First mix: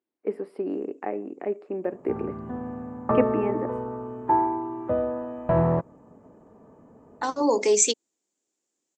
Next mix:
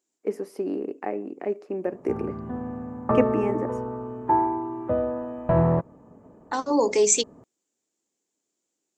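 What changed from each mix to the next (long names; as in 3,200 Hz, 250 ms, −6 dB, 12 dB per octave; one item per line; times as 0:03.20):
first voice: remove moving average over 7 samples
second voice: entry −0.70 s
master: add low-shelf EQ 190 Hz +3.5 dB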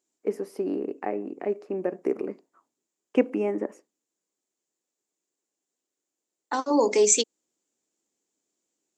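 background: muted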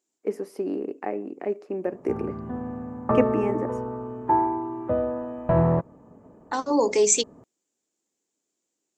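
background: unmuted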